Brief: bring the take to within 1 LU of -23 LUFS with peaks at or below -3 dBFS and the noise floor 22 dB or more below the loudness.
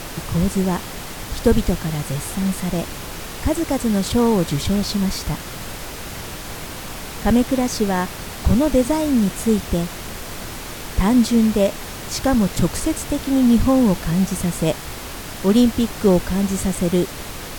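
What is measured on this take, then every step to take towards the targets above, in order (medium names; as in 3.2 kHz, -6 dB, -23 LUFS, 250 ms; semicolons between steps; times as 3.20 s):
noise floor -32 dBFS; noise floor target -42 dBFS; loudness -20.0 LUFS; peak level -4.0 dBFS; loudness target -23.0 LUFS
-> noise print and reduce 10 dB; trim -3 dB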